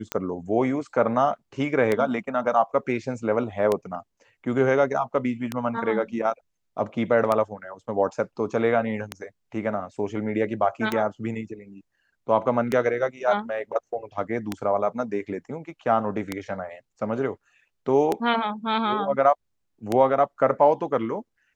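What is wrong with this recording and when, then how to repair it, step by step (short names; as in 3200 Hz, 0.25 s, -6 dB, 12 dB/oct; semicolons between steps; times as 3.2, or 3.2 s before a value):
tick 33 1/3 rpm -10 dBFS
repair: de-click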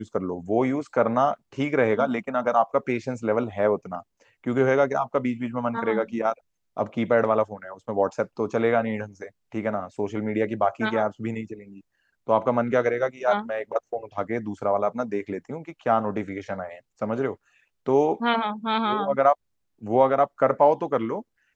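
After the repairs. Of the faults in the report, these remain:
none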